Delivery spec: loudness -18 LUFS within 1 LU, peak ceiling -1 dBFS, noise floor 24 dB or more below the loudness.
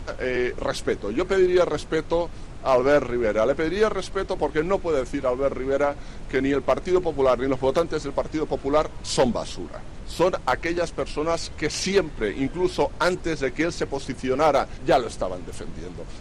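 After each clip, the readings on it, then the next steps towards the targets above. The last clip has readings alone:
clipped 0.2%; flat tops at -11.0 dBFS; noise floor -38 dBFS; noise floor target -48 dBFS; loudness -24.0 LUFS; peak -11.0 dBFS; loudness target -18.0 LUFS
-> clip repair -11 dBFS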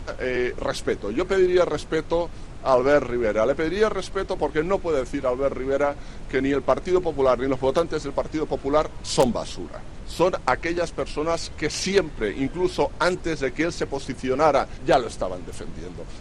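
clipped 0.0%; noise floor -38 dBFS; noise floor target -48 dBFS
-> noise print and reduce 10 dB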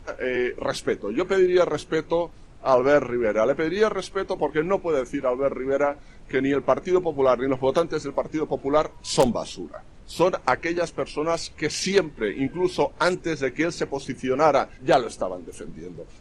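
noise floor -46 dBFS; noise floor target -48 dBFS
-> noise print and reduce 6 dB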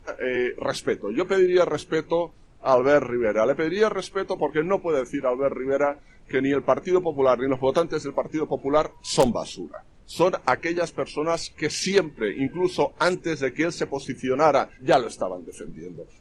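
noise floor -51 dBFS; loudness -24.0 LUFS; peak -2.5 dBFS; loudness target -18.0 LUFS
-> gain +6 dB; limiter -1 dBFS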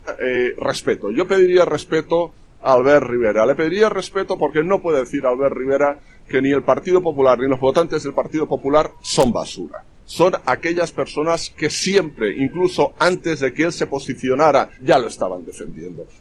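loudness -18.0 LUFS; peak -1.0 dBFS; noise floor -45 dBFS

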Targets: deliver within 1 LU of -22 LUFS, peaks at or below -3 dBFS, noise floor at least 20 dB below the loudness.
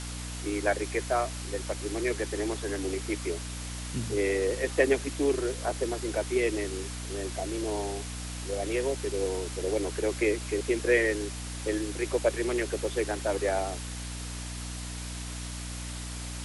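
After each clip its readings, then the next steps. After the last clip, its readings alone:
hum 60 Hz; harmonics up to 300 Hz; hum level -36 dBFS; noise floor -38 dBFS; noise floor target -51 dBFS; loudness -30.5 LUFS; peak -10.5 dBFS; loudness target -22.0 LUFS
-> de-hum 60 Hz, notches 5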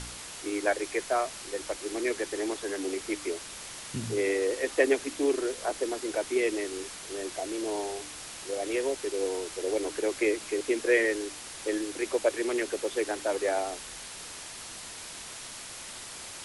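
hum none; noise floor -43 dBFS; noise floor target -51 dBFS
-> noise print and reduce 8 dB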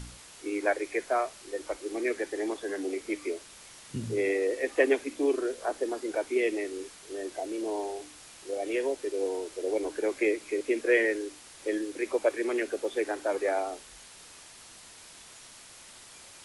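noise floor -51 dBFS; loudness -31.0 LUFS; peak -10.5 dBFS; loudness target -22.0 LUFS
-> gain +9 dB; limiter -3 dBFS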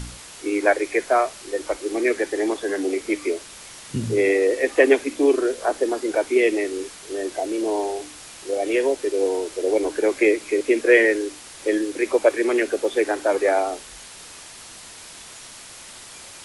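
loudness -22.0 LUFS; peak -3.0 dBFS; noise floor -42 dBFS

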